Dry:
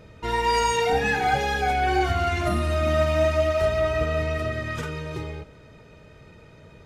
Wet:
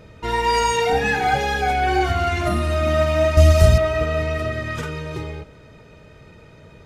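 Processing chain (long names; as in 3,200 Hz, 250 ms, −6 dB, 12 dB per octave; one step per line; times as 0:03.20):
0:03.37–0:03.78: bass and treble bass +15 dB, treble +14 dB
level +3 dB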